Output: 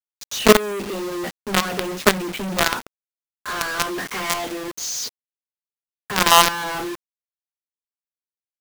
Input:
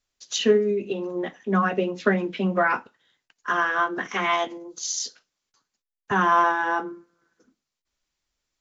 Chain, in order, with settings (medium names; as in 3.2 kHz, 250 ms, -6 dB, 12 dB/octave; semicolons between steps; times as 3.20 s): wow and flutter 21 cents; companded quantiser 2-bit; trim -1 dB